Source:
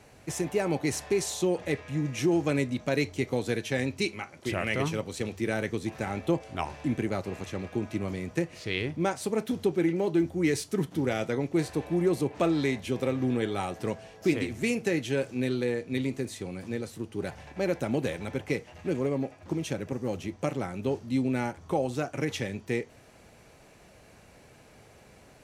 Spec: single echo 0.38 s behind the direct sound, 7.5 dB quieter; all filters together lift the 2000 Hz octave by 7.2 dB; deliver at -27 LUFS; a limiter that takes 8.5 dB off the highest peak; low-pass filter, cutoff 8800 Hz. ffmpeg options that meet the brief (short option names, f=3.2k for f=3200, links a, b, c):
-af "lowpass=8.8k,equalizer=f=2k:t=o:g=8.5,alimiter=limit=-17.5dB:level=0:latency=1,aecho=1:1:380:0.422,volume=3dB"